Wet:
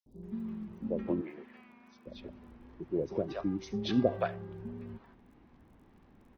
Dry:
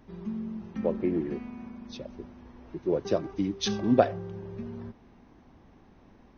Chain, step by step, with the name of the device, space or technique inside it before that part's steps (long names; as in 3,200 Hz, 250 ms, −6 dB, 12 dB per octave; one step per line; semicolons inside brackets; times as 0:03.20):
lo-fi chain (low-pass filter 4,100 Hz 12 dB per octave; tape wow and flutter; surface crackle 23 per second −51 dBFS)
0:01.15–0:02.01: high-pass filter 1,000 Hz 6 dB per octave
three-band delay without the direct sound highs, lows, mids 60/230 ms, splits 650/5,600 Hz
level −4 dB